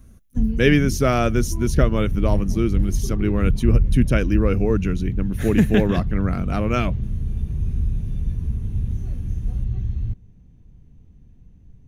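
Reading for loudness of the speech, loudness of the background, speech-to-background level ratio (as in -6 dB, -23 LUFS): -22.0 LUFS, -26.0 LUFS, 4.0 dB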